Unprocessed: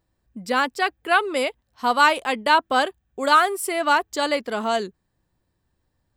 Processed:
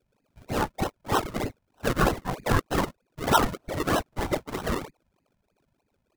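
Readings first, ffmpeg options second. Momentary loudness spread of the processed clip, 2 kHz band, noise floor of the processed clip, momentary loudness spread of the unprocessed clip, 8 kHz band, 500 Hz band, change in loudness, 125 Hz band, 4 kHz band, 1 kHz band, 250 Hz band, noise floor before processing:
10 LU, −11.0 dB, −75 dBFS, 10 LU, −3.0 dB, −5.5 dB, −7.0 dB, can't be measured, −8.5 dB, −8.5 dB, 0.0 dB, −74 dBFS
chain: -filter_complex "[0:a]aeval=exprs='val(0)+0.00251*(sin(2*PI*50*n/s)+sin(2*PI*2*50*n/s)/2+sin(2*PI*3*50*n/s)/3+sin(2*PI*4*50*n/s)/4+sin(2*PI*5*50*n/s)/5)':channel_layout=same,highpass=frequency=630:poles=1,bandreject=frequency=1500:width=17,afftfilt=real='hypot(re,im)*cos(2*PI*random(0))':imag='hypot(re,im)*sin(2*PI*random(1))':win_size=512:overlap=0.75,lowpass=frequency=2200:width_type=q:width=0.5098,lowpass=frequency=2200:width_type=q:width=0.6013,lowpass=frequency=2200:width_type=q:width=0.9,lowpass=frequency=2200:width_type=q:width=2.563,afreqshift=-2600,acrossover=split=1100[link_01][link_02];[link_02]acrusher=samples=38:mix=1:aa=0.000001:lfo=1:lforange=38:lforate=3.2[link_03];[link_01][link_03]amix=inputs=2:normalize=0,adynamicequalizer=threshold=0.0112:dfrequency=1100:dqfactor=1.4:tfrequency=1100:tqfactor=1.4:attack=5:release=100:ratio=0.375:range=1.5:mode=boostabove:tftype=bell,volume=4dB"

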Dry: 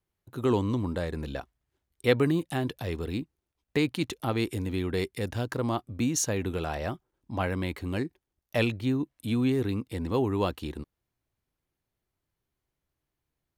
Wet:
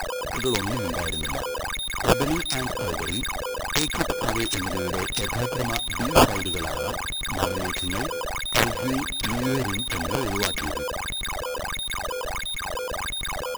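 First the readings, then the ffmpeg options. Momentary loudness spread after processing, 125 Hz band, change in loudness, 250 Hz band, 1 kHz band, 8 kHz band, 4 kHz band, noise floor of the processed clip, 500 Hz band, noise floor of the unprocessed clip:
7 LU, +0.5 dB, +4.0 dB, 0.0 dB, +11.0 dB, +8.5 dB, +14.0 dB, −31 dBFS, +3.5 dB, −85 dBFS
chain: -filter_complex "[0:a]asplit=2[link_01][link_02];[link_02]acompressor=threshold=-35dB:ratio=8,volume=3dB[link_03];[link_01][link_03]amix=inputs=2:normalize=0,aeval=exprs='(mod(4.47*val(0)+1,2)-1)/4.47':channel_layout=same,aeval=exprs='val(0)+0.00631*sin(2*PI*11000*n/s)':channel_layout=same,aexciter=amount=6.7:drive=7.4:freq=4900,acrusher=bits=7:mode=log:mix=0:aa=0.000001,flanger=delay=3:depth=5.1:regen=66:speed=0.46:shape=sinusoidal,acrusher=samples=13:mix=1:aa=0.000001:lfo=1:lforange=20.8:lforate=1.5,asoftclip=type=tanh:threshold=-6dB,aecho=1:1:178:0.075"

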